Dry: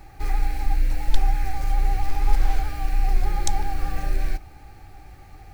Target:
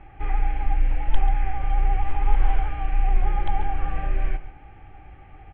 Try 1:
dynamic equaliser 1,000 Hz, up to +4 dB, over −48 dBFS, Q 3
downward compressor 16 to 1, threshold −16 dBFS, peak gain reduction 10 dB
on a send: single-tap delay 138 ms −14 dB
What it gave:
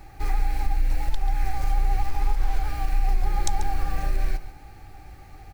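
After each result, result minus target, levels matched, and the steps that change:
downward compressor: peak gain reduction +10 dB; 4,000 Hz band +6.5 dB
remove: downward compressor 16 to 1, threshold −16 dBFS, peak gain reduction 10 dB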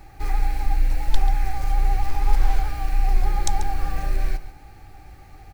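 4,000 Hz band +7.0 dB
add after dynamic equaliser: Chebyshev low-pass filter 3,200 Hz, order 6

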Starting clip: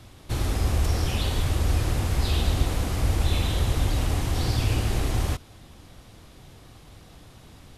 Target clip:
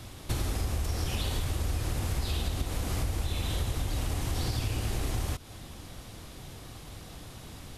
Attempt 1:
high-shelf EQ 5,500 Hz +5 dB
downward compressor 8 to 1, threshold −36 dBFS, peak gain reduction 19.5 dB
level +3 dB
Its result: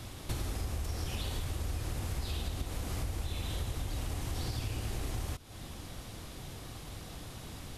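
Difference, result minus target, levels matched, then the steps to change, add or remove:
downward compressor: peak gain reduction +5.5 dB
change: downward compressor 8 to 1, threshold −30 dBFS, peak gain reduction 14.5 dB

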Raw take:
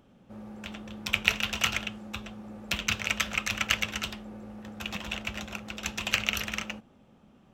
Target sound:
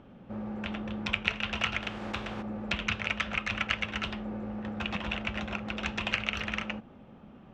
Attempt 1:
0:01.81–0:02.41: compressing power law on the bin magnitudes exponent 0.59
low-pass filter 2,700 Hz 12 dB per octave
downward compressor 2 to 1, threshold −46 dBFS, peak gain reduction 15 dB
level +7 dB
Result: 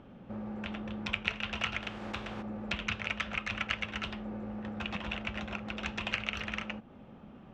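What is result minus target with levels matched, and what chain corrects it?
downward compressor: peak gain reduction +3.5 dB
0:01.81–0:02.41: compressing power law on the bin magnitudes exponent 0.59
low-pass filter 2,700 Hz 12 dB per octave
downward compressor 2 to 1, threshold −39 dBFS, peak gain reduction 11.5 dB
level +7 dB

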